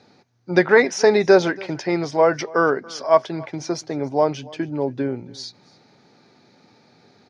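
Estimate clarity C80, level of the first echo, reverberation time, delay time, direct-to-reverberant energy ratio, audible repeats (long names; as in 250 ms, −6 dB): no reverb audible, −23.0 dB, no reverb audible, 282 ms, no reverb audible, 1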